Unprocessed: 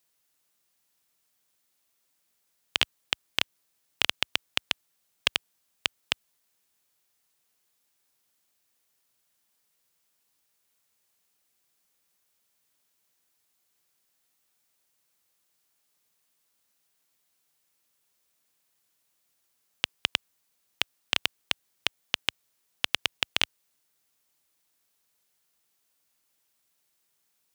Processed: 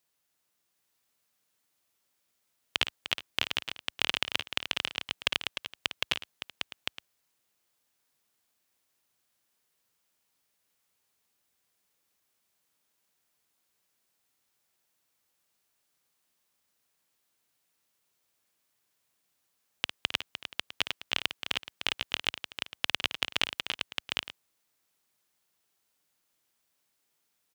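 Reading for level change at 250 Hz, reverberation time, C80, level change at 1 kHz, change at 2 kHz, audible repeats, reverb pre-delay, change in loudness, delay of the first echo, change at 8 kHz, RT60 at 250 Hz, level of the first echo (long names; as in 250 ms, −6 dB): 0.0 dB, no reverb audible, no reverb audible, 0.0 dB, −1.0 dB, 5, no reverb audible, −2.5 dB, 54 ms, −3.0 dB, no reverb audible, −11.0 dB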